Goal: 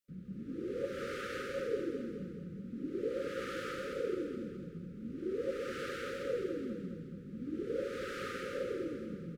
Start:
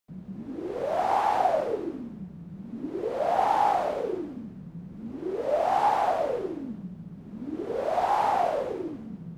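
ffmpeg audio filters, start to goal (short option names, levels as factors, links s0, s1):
-filter_complex "[0:a]asplit=2[s0][s1];[s1]aecho=0:1:211|422|633|844|1055|1266:0.422|0.223|0.118|0.0628|0.0333|0.0176[s2];[s0][s2]amix=inputs=2:normalize=0,afftfilt=real='re*(1-between(b*sr/4096,570,1200))':imag='im*(1-between(b*sr/4096,570,1200))':win_size=4096:overlap=0.75,volume=0.531"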